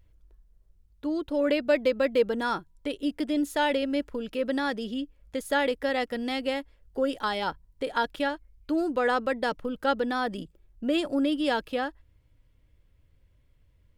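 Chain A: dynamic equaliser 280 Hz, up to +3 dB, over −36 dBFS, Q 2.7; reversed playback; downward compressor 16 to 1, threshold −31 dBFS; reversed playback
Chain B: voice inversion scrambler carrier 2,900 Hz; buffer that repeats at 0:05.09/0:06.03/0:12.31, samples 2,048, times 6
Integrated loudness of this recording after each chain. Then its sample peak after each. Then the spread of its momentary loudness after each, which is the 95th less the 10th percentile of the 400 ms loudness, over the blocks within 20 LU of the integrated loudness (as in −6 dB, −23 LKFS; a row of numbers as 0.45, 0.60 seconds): −36.5, −25.5 LKFS; −21.5, −11.5 dBFS; 5, 10 LU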